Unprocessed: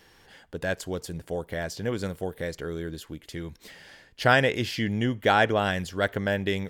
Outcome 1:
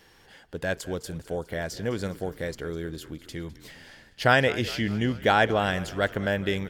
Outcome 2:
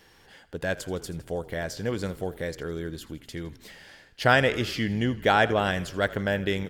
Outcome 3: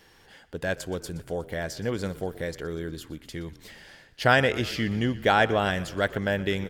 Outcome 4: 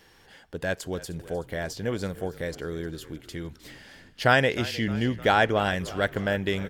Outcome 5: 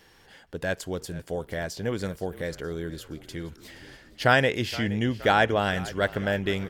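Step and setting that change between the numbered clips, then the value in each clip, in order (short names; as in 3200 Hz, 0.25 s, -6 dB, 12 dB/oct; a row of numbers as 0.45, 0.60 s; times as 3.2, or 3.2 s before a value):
frequency-shifting echo, time: 206, 81, 121, 307, 470 ms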